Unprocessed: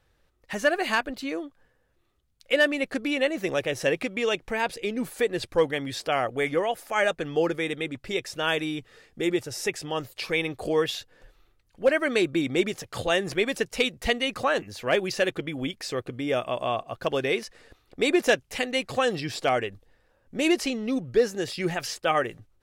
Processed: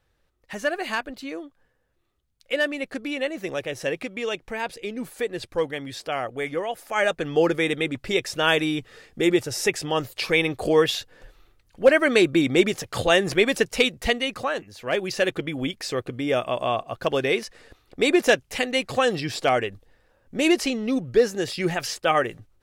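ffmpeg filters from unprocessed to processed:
-af "volume=14dB,afade=t=in:st=6.66:d=0.95:silence=0.398107,afade=t=out:st=13.63:d=1.06:silence=0.281838,afade=t=in:st=14.69:d=0.65:silence=0.375837"

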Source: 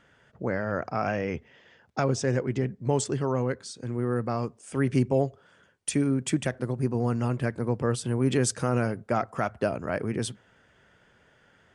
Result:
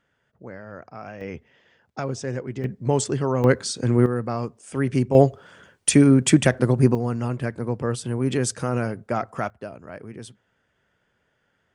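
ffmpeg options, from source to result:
-af "asetnsamples=n=441:p=0,asendcmd='1.21 volume volume -3dB;2.64 volume volume 4dB;3.44 volume volume 12dB;4.06 volume volume 2dB;5.15 volume volume 10.5dB;6.95 volume volume 1dB;9.5 volume volume -9dB',volume=-10dB"

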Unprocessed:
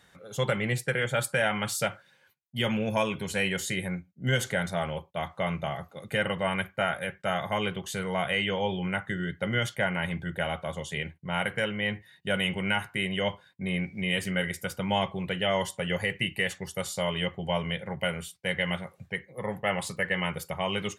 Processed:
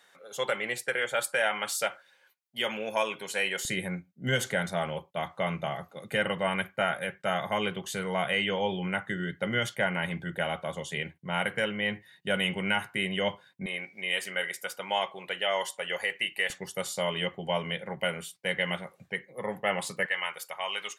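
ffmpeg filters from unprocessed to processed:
-af "asetnsamples=n=441:p=0,asendcmd='3.65 highpass f 150;13.66 highpass f 540;16.5 highpass f 200;20.06 highpass f 830',highpass=440"

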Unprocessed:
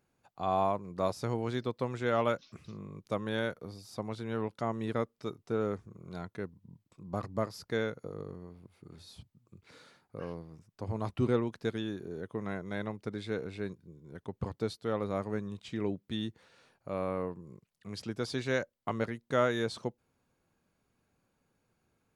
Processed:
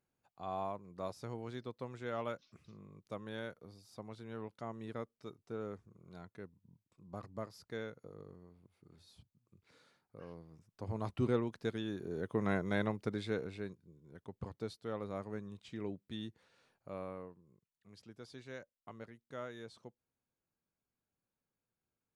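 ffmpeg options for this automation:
-af "volume=4dB,afade=t=in:st=10.24:d=0.69:silence=0.473151,afade=t=in:st=11.84:d=0.71:silence=0.398107,afade=t=out:st=12.55:d=1.22:silence=0.251189,afade=t=out:st=16.88:d=0.5:silence=0.354813"

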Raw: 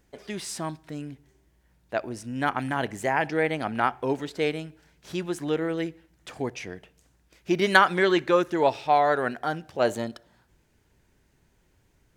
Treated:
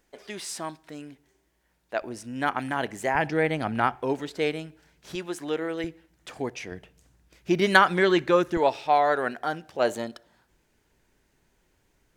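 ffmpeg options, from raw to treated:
-af "asetnsamples=n=441:p=0,asendcmd='2.02 equalizer g -6;3.15 equalizer g 5;3.95 equalizer g -3;5.15 equalizer g -14.5;5.84 equalizer g -4;6.72 equalizer g 4;8.57 equalizer g -7.5',equalizer=f=93:t=o:w=2.1:g=-15"

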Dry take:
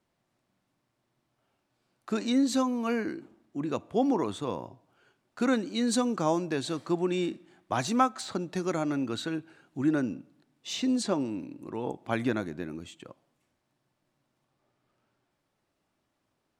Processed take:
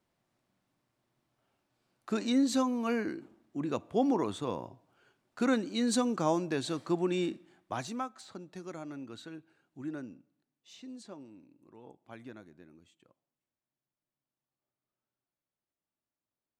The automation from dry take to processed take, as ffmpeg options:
-af "volume=-2dB,afade=t=out:st=7.33:d=0.69:silence=0.281838,afade=t=out:st=9.95:d=0.73:silence=0.501187"

